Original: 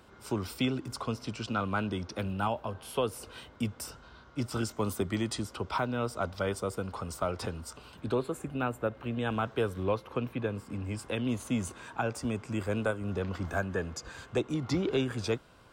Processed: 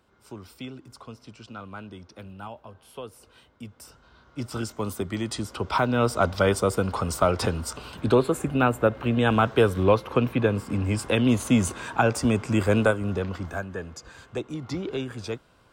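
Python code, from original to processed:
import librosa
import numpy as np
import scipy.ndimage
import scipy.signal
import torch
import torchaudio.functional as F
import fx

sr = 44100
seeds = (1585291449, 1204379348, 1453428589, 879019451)

y = fx.gain(x, sr, db=fx.line((3.64, -8.5), (4.5, 1.5), (5.16, 1.5), (6.08, 10.5), (12.8, 10.5), (13.67, -1.5)))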